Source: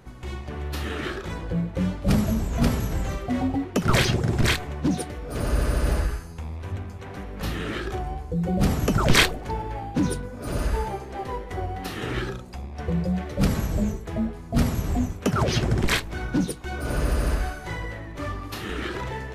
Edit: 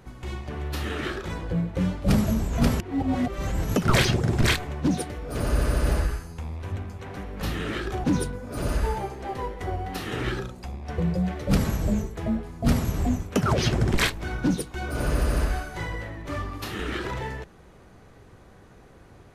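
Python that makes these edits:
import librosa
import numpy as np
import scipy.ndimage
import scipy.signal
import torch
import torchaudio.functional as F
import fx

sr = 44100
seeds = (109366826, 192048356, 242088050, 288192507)

y = fx.edit(x, sr, fx.reverse_span(start_s=2.8, length_s=0.96),
    fx.cut(start_s=8.04, length_s=1.9), tone=tone)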